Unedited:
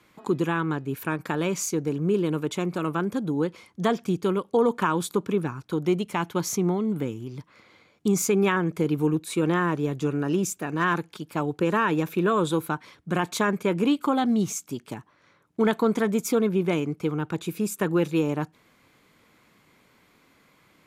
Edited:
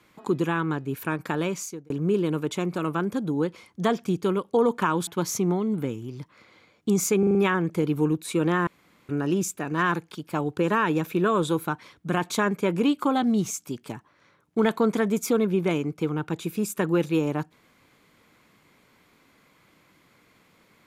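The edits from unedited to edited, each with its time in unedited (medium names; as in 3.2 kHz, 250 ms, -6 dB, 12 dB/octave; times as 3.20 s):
1.40–1.90 s: fade out linear
5.07–6.25 s: delete
8.37 s: stutter 0.04 s, 5 plays
9.69–10.11 s: room tone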